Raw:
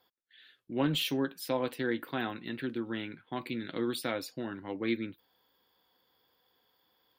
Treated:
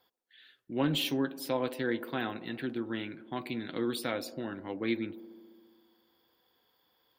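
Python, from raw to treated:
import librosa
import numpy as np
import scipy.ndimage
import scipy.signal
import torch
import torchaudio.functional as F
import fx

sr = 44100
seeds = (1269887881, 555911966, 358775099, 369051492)

y = fx.echo_wet_bandpass(x, sr, ms=68, feedback_pct=79, hz=420.0, wet_db=-15)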